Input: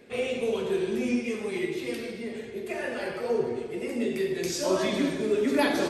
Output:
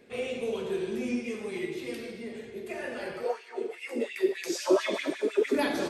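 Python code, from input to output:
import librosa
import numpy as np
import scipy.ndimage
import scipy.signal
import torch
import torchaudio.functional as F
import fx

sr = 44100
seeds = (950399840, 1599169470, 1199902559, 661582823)

y = fx.filter_lfo_highpass(x, sr, shape='sine', hz=fx.line((3.24, 2.1), (5.54, 7.8)), low_hz=310.0, high_hz=2600.0, q=3.1, at=(3.24, 5.54), fade=0.02)
y = y * 10.0 ** (-4.0 / 20.0)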